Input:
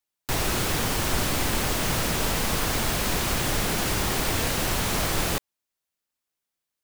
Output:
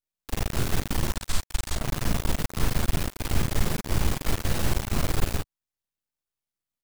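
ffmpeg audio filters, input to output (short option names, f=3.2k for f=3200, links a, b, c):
-filter_complex "[0:a]asettb=1/sr,asplit=3[a][b][c];[a]atrim=end=1.154[d];[b]atrim=start=1.15:end=1.75,asetpts=PTS-STARTPTS,afade=t=in:d=0.004:c=qsin,afade=t=out:st=0.596:d=0.004:c=qsin,equalizer=f=125:t=o:w=1:g=-10,equalizer=f=250:t=o:w=1:g=-9,equalizer=f=500:t=o:w=1:g=-9,equalizer=f=4k:t=o:w=1:g=8,equalizer=f=8k:t=o:w=1:g=11[e];[c]atrim=start=1.746[f];[d][e]acrossfade=d=0.004:c1=hsin:c2=qsin[g];[g][f]acrossfade=d=0.004:c1=qsin:c2=hsin,acrossover=split=110|1900[h][i][j];[j]alimiter=limit=-20dB:level=0:latency=1:release=247[k];[h][i][k]amix=inputs=3:normalize=0,lowshelf=f=210:g=12,aecho=1:1:37|51:0.531|0.562,aeval=exprs='max(val(0),0)':c=same,volume=-5.5dB"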